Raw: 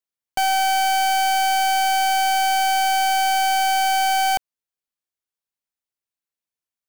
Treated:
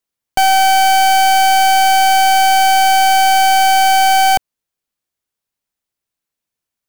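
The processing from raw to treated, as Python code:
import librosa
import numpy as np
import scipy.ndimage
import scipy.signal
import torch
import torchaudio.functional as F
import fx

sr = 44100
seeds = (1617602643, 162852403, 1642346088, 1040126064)

y = fx.low_shelf(x, sr, hz=370.0, db=5.0)
y = y * 10.0 ** (7.5 / 20.0)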